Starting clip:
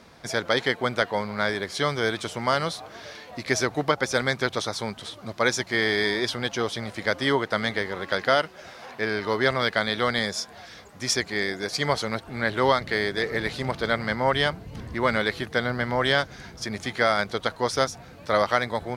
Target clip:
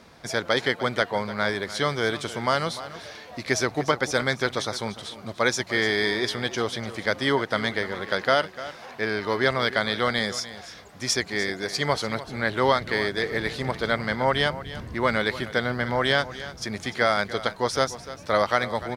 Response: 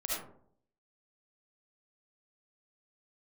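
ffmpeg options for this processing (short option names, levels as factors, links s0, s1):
-af "aecho=1:1:297:0.178"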